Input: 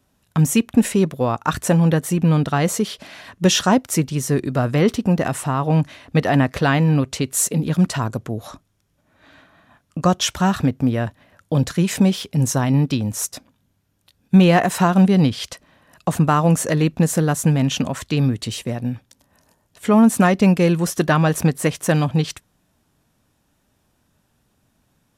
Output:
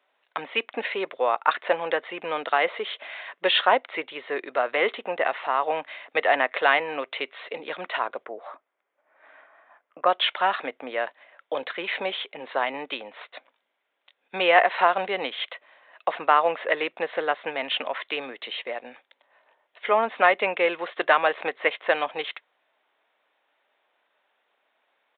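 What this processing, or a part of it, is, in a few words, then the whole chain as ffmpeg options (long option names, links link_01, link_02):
musical greeting card: -filter_complex "[0:a]aresample=8000,aresample=44100,highpass=frequency=500:width=0.5412,highpass=frequency=500:width=1.3066,equalizer=frequency=2100:width_type=o:width=0.3:gain=7,asplit=3[link_01][link_02][link_03];[link_01]afade=type=out:start_time=8.24:duration=0.02[link_04];[link_02]lowpass=1700,afade=type=in:start_time=8.24:duration=0.02,afade=type=out:start_time=10.05:duration=0.02[link_05];[link_03]afade=type=in:start_time=10.05:duration=0.02[link_06];[link_04][link_05][link_06]amix=inputs=3:normalize=0"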